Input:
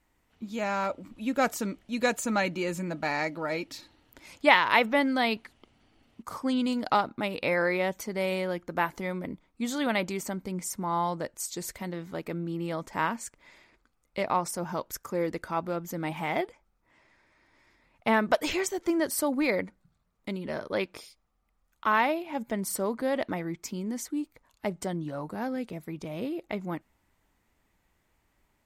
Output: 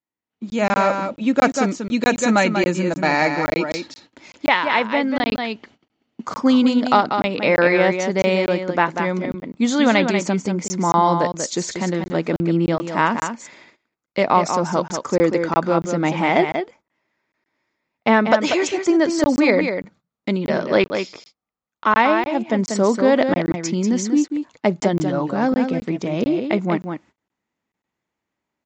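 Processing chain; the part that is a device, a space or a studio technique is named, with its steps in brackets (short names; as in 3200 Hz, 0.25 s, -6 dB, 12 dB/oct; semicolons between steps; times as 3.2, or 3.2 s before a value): echo 0.19 s -7 dB; gate -57 dBFS, range -21 dB; call with lost packets (HPF 180 Hz 12 dB/oct; downsampling 16000 Hz; AGC gain up to 13 dB; packet loss packets of 20 ms random); low shelf 330 Hz +5.5 dB; gain -1 dB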